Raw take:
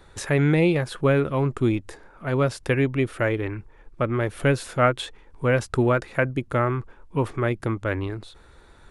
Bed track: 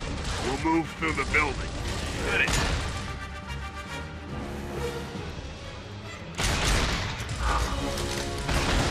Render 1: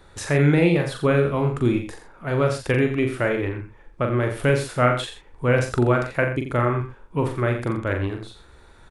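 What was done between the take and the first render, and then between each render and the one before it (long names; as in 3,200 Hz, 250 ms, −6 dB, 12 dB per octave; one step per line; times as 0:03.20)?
double-tracking delay 41 ms −5 dB
single-tap delay 86 ms −9.5 dB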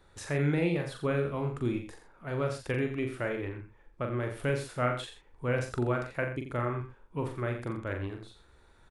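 level −10.5 dB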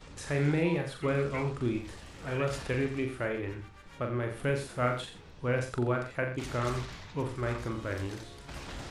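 mix in bed track −17 dB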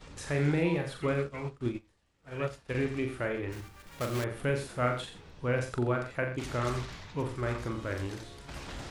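0:01.14–0:02.75: expander for the loud parts 2.5 to 1, over −44 dBFS
0:03.52–0:04.25: one scale factor per block 3 bits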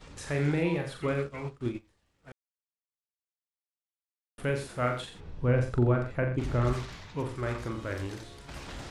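0:02.32–0:04.38: silence
0:05.20–0:06.73: spectral tilt −2.5 dB per octave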